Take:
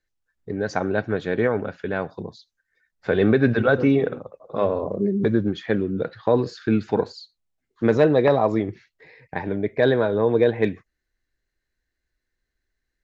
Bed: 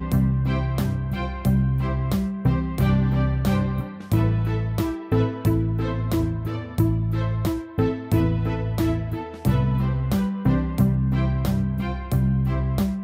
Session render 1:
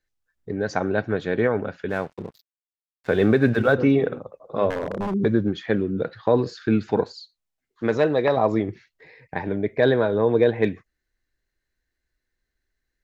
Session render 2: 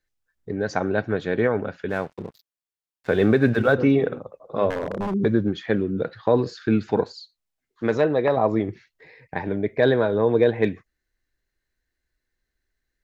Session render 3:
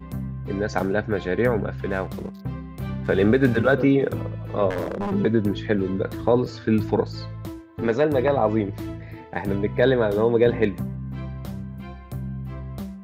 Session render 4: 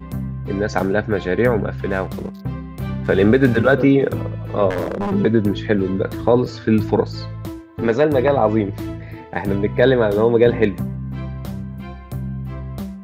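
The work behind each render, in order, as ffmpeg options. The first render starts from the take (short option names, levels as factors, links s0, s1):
-filter_complex "[0:a]asettb=1/sr,asplit=3[s0][s1][s2];[s0]atrim=end=1.894[s3];[s1]atrim=start=1.89:end=3.75,asetpts=PTS-STARTPTS,afade=t=in:d=0.004:c=qsin,afade=t=out:st=1.856:d=0.004:c=qsin,aeval=exprs='sgn(val(0))*max(abs(val(0))-0.00562,0)':c=same[s4];[s2]atrim=start=3.746[s5];[s3][s4]acrossfade=d=0.004:c1=hsin:c2=qsin[s6];[s6][s5]acrossfade=d=0.004:c1=qsin:c2=hsin,asettb=1/sr,asplit=3[s7][s8][s9];[s7]atrim=end=4.704[s10];[s8]atrim=start=4.7:end=5.14,asetpts=PTS-STARTPTS,afade=t=in:d=0.004:c=qsin,afade=t=out:st=0.436:d=0.004:c=qsin,aeval=exprs='0.0944*(abs(mod(val(0)/0.0944+3,4)-2)-1)':c=same[s11];[s9]atrim=start=5.136[s12];[s10][s11]acrossfade=d=0.004:c1=hsin:c2=qsin[s13];[s13][s12]acrossfade=d=0.004:c1=qsin:c2=hsin,asettb=1/sr,asplit=3[s14][s15][s16];[s14]atrim=end=7.044[s17];[s15]atrim=start=7.04:end=8.37,asetpts=PTS-STARTPTS,afade=t=in:d=0.004:c=qsin,afade=t=out:st=1.326:d=0.004:c=qsin,lowshelf=f=470:g=-6.5[s18];[s16]atrim=start=8.366[s19];[s17][s18]acrossfade=d=0.004:c1=hsin:c2=qsin[s20];[s20][s19]acrossfade=d=0.004:c1=qsin:c2=hsin"
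-filter_complex "[0:a]asettb=1/sr,asplit=3[s0][s1][s2];[s0]atrim=end=8.014[s3];[s1]atrim=start=8.01:end=8.6,asetpts=PTS-STARTPTS,afade=t=in:d=0.004:c=qsin,afade=t=out:st=0.586:d=0.004:c=qsin,highshelf=f=4000:g=-10.5[s4];[s2]atrim=start=8.596[s5];[s3][s4]acrossfade=d=0.004:c1=hsin:c2=qsin[s6];[s6][s5]acrossfade=d=0.004:c1=qsin:c2=hsin"
-filter_complex "[1:a]volume=0.299[s0];[0:a][s0]amix=inputs=2:normalize=0"
-af "volume=1.68,alimiter=limit=0.794:level=0:latency=1"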